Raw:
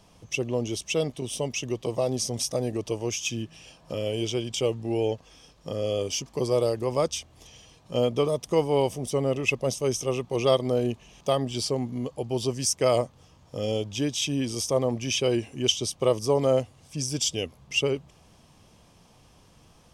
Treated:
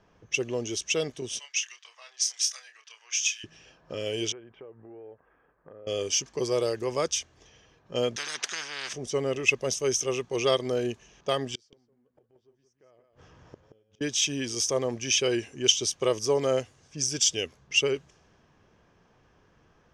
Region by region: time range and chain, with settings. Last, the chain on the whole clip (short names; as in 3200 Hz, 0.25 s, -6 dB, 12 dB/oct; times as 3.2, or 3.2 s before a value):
1.39–3.44 HPF 1400 Hz 24 dB/oct + high shelf 9100 Hz -3 dB + doubler 28 ms -6 dB
4.32–5.87 LPF 1700 Hz 24 dB/oct + low shelf 430 Hz -10 dB + compressor 5:1, threshold -40 dBFS
8.16–8.93 HPF 210 Hz + three-band isolator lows -23 dB, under 460 Hz, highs -14 dB, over 5400 Hz + spectral compressor 10:1
11.55–14.01 G.711 law mismatch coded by mu + flipped gate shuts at -26 dBFS, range -35 dB + echo 0.177 s -7.5 dB
whole clip: dynamic EQ 2800 Hz, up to +7 dB, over -44 dBFS, Q 0.74; low-pass opened by the level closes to 2400 Hz, open at -23.5 dBFS; fifteen-band EQ 400 Hz +7 dB, 1600 Hz +11 dB, 6300 Hz +11 dB; gain -7.5 dB